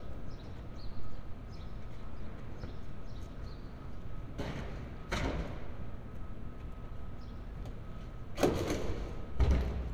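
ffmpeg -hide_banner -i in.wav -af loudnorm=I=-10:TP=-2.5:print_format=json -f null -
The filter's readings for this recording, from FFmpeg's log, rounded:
"input_i" : "-39.4",
"input_tp" : "-14.4",
"input_lra" : "10.5",
"input_thresh" : "-49.4",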